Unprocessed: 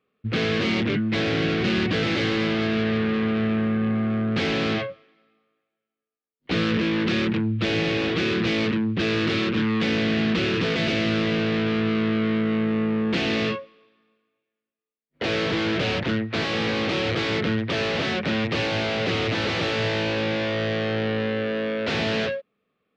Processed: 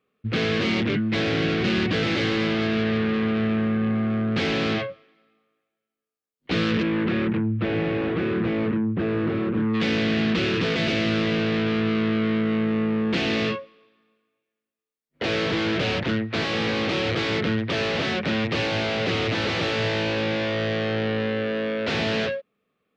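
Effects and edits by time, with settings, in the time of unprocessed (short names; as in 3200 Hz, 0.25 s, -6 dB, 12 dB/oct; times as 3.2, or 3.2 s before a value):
6.82–9.73 LPF 2200 Hz -> 1100 Hz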